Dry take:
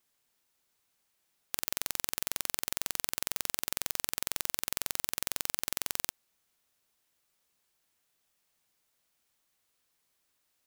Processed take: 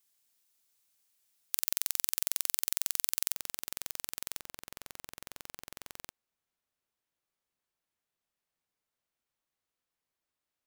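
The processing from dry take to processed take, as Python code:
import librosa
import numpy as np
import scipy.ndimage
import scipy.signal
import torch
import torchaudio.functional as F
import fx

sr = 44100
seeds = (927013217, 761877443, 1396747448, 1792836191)

y = fx.high_shelf(x, sr, hz=3000.0, db=fx.steps((0.0, 12.0), (3.33, 3.0), (4.38, -7.5)))
y = y * 10.0 ** (-8.0 / 20.0)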